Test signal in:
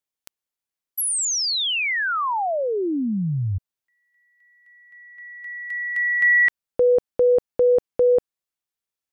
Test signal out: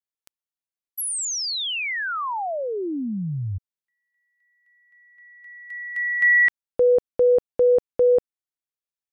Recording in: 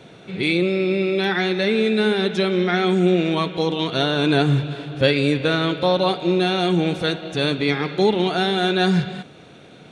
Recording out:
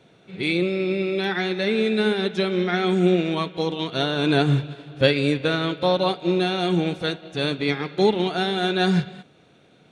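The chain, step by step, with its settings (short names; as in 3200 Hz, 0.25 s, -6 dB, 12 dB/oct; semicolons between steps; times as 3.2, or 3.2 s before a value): upward expander 1.5:1, over -34 dBFS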